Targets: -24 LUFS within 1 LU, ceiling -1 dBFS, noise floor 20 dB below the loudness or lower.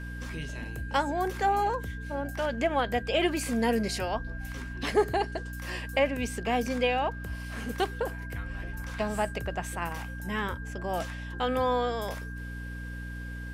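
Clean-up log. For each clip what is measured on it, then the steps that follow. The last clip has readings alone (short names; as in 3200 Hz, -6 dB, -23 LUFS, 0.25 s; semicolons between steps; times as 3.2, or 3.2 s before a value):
hum 60 Hz; harmonics up to 300 Hz; hum level -36 dBFS; steady tone 1600 Hz; tone level -43 dBFS; loudness -31.0 LUFS; peak -12.0 dBFS; loudness target -24.0 LUFS
-> notches 60/120/180/240/300 Hz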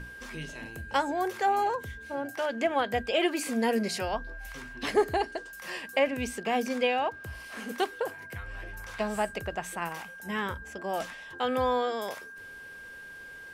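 hum none; steady tone 1600 Hz; tone level -43 dBFS
-> notch 1600 Hz, Q 30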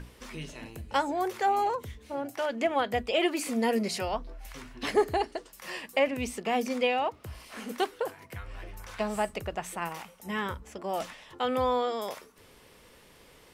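steady tone none; loudness -30.5 LUFS; peak -12.5 dBFS; loudness target -24.0 LUFS
-> gain +6.5 dB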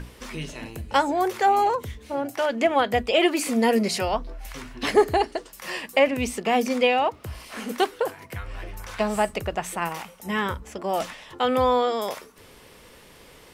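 loudness -24.0 LUFS; peak -6.0 dBFS; noise floor -50 dBFS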